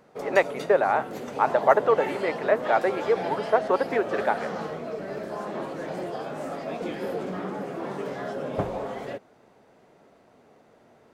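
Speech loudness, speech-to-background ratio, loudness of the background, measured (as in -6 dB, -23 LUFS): -24.5 LUFS, 8.5 dB, -33.0 LUFS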